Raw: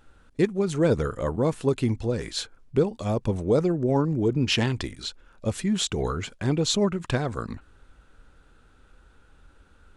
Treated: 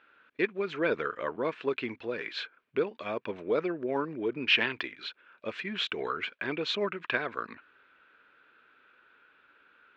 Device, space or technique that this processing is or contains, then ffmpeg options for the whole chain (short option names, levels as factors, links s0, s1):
phone earpiece: -af "highpass=490,equalizer=f=530:t=q:w=4:g=-4,equalizer=f=790:t=q:w=4:g=-9,equalizer=f=1600:t=q:w=4:g=5,equalizer=f=2400:t=q:w=4:g=7,lowpass=f=3400:w=0.5412,lowpass=f=3400:w=1.3066"